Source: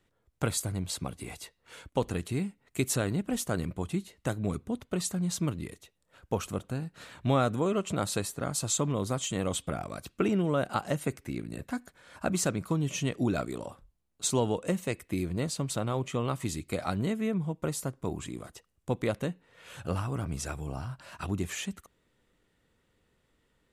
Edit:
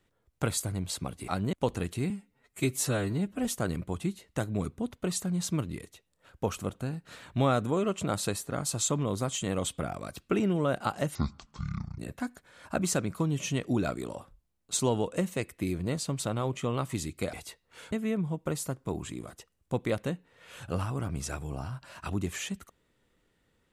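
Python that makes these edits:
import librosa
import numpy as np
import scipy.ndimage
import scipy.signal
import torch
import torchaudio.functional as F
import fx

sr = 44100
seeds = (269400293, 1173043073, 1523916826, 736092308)

y = fx.edit(x, sr, fx.swap(start_s=1.28, length_s=0.59, other_s=16.84, other_length_s=0.25),
    fx.stretch_span(start_s=2.44, length_s=0.9, factor=1.5),
    fx.speed_span(start_s=11.04, length_s=0.45, speed=0.54), tone=tone)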